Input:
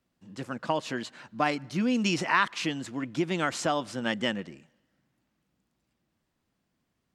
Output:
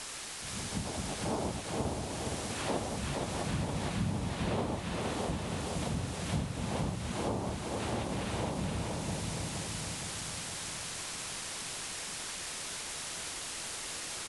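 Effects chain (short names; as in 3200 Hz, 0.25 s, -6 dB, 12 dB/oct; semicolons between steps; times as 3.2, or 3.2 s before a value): spectral delay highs early, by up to 0.461 s; noise vocoder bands 3; high shelf 2400 Hz -10 dB; notches 60/120/180/240/300 Hz; on a send: echo 0.326 s -13 dB; on the sum: requantised 8-bit, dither triangular; compressor 6:1, threshold -39 dBFS, peak gain reduction 16 dB; feedback echo 0.234 s, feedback 58%, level -3 dB; speed mistake 15 ips tape played at 7.5 ips; gain +5.5 dB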